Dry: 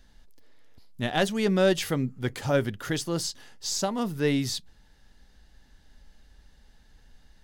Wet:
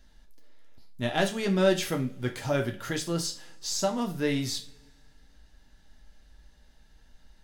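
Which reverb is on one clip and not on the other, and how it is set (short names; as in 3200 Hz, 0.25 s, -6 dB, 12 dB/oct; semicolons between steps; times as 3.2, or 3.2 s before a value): two-slope reverb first 0.31 s, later 1.9 s, from -27 dB, DRR 2.5 dB; gain -3 dB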